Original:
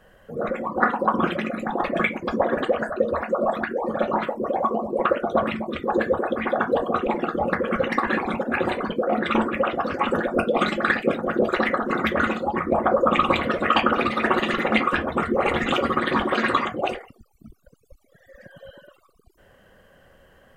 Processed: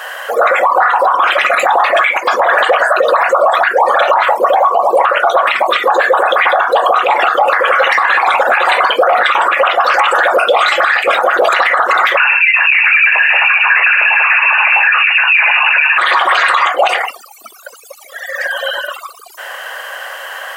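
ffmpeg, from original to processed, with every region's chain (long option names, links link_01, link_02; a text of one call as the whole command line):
ffmpeg -i in.wav -filter_complex "[0:a]asettb=1/sr,asplit=3[link_01][link_02][link_03];[link_01]atrim=end=12.174[link_04];[link_02]atrim=start=12.17:end=15.98,asetpts=PTS-STARTPTS,afade=type=in:duration=0.004:curve=qsin,afade=type=out:start_time=3.806:duration=0.004:curve=qsin,bandreject=frequency=730:width=5.8,asoftclip=type=hard:threshold=-16.5dB,lowpass=frequency=2500:width_type=q:width=0.5098,lowpass=frequency=2500:width_type=q:width=0.6013,lowpass=frequency=2500:width_type=q:width=0.9,lowpass=frequency=2500:width_type=q:width=2.563,afreqshift=-2900[link_05];[link_03]atrim=start=15.976[link_06];[link_04][link_05]acrossfade=duration=0.004:curve1=hsin:curve2=qsin[link_07];[link_07][link_06]acrossfade=duration=0.004:curve1=qsin:curve2=hsin,highpass=frequency=770:width=0.5412,highpass=frequency=770:width=1.3066,acompressor=threshold=-34dB:ratio=6,alimiter=level_in=34.5dB:limit=-1dB:release=50:level=0:latency=1,volume=-1dB" out.wav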